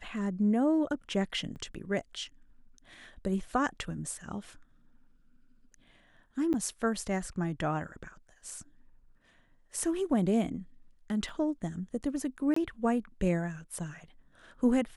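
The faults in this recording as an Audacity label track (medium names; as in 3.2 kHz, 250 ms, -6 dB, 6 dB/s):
1.550000	1.560000	dropout 8.9 ms
6.530000	6.540000	dropout 9.5 ms
11.290000	11.290000	dropout 2.6 ms
12.540000	12.560000	dropout 24 ms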